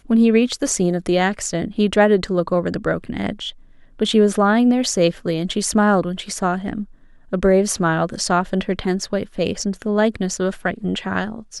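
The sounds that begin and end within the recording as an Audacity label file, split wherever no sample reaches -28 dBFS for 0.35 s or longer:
3.990000	6.840000	sound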